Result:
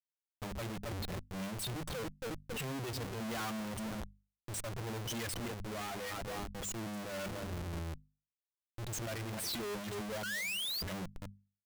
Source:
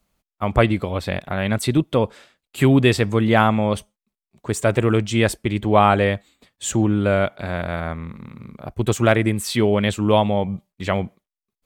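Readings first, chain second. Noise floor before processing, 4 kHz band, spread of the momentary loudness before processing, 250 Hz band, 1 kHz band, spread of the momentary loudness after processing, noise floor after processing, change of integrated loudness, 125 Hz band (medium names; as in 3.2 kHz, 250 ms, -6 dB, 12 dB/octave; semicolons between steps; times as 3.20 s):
under -85 dBFS, -11.0 dB, 13 LU, -22.0 dB, -22.0 dB, 9 LU, under -85 dBFS, -19.5 dB, -21.0 dB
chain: expander on every frequency bin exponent 3; feedback delay 270 ms, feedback 33%, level -22 dB; rotary cabinet horn 1.1 Hz; painted sound rise, 10.23–10.82 s, 1.4–4.9 kHz -29 dBFS; valve stage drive 38 dB, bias 0.3; Schmitt trigger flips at -56 dBFS; hum notches 50/100/150/200/250 Hz; peak limiter -41 dBFS, peak gain reduction 6 dB; trim +5.5 dB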